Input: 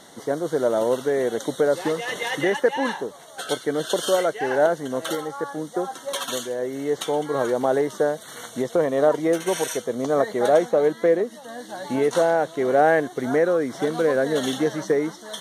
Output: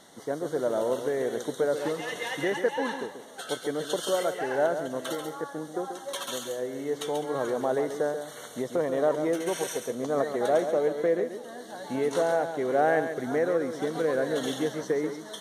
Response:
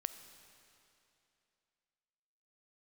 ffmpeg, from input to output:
-filter_complex "[0:a]asplit=2[a][b];[1:a]atrim=start_sample=2205,highshelf=f=8.7k:g=6,adelay=137[c];[b][c]afir=irnorm=-1:irlink=0,volume=-7dB[d];[a][d]amix=inputs=2:normalize=0,volume=-6.5dB"

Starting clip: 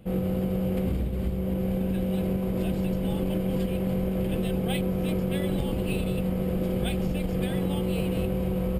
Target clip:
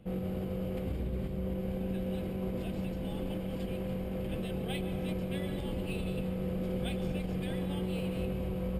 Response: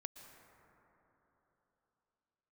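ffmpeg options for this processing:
-filter_complex "[0:a]highshelf=f=8.4k:g=-8.5,acrossover=split=1800[a][b];[a]alimiter=limit=-22dB:level=0:latency=1:release=67[c];[c][b]amix=inputs=2:normalize=0[d];[1:a]atrim=start_sample=2205,afade=t=out:st=0.39:d=0.01,atrim=end_sample=17640[e];[d][e]afir=irnorm=-1:irlink=0"

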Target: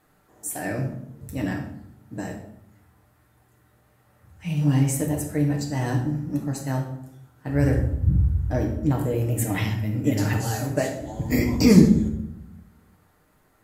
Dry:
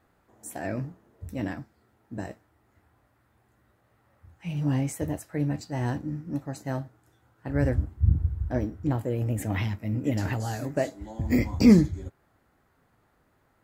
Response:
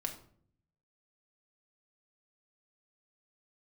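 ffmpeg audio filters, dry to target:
-filter_complex "[0:a]aemphasis=mode=production:type=cd,bandreject=f=50:t=h:w=6,bandreject=f=100:t=h:w=6[a];[1:a]atrim=start_sample=2205,asetrate=28665,aresample=44100[b];[a][b]afir=irnorm=-1:irlink=0,volume=1dB"

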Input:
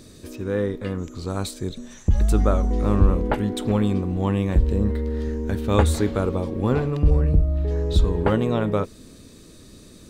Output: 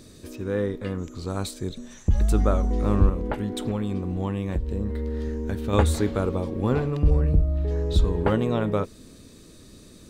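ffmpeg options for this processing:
-filter_complex "[0:a]asettb=1/sr,asplit=3[a][b][c];[a]atrim=end=3.094[d];[b]atrim=start=3.09:end=5.73,asetpts=PTS-STARTPTS,afade=t=in:d=0.004:c=qsin,afade=t=out:st=2.636:d=0.004:c=qsin,acompressor=threshold=-21dB:ratio=6[e];[c]atrim=start=5.726[f];[d][e]acrossfade=d=0.004:c1=hsin:c2=qsin[g];[g][f]acrossfade=d=0.004:c1=qsin:c2=hsin,volume=-2dB"

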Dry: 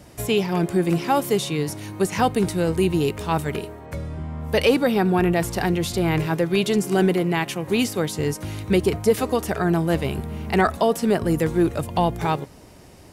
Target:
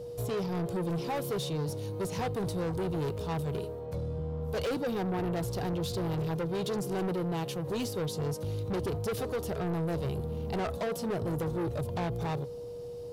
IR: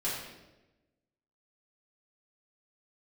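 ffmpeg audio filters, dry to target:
-af "equalizer=f=125:t=o:w=1:g=9,equalizer=f=250:t=o:w=1:g=-4,equalizer=f=500:t=o:w=1:g=4,equalizer=f=2k:t=o:w=1:g=-12,equalizer=f=4k:t=o:w=1:g=5,equalizer=f=8k:t=o:w=1:g=-5,asoftclip=type=tanh:threshold=-23dB,aeval=exprs='val(0)+0.0251*sin(2*PI*480*n/s)':c=same,volume=-6.5dB"

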